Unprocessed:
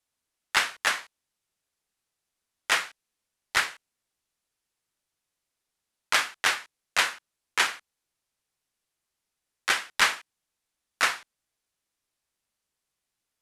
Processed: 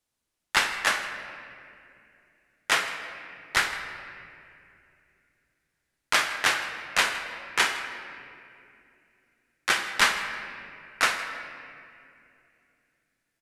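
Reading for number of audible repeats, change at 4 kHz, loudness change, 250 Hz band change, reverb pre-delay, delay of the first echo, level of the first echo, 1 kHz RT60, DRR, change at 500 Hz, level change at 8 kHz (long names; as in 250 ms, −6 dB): 1, +1.0 dB, 0.0 dB, +5.5 dB, 6 ms, 160 ms, −19.0 dB, 2.3 s, 5.5 dB, +3.5 dB, +0.5 dB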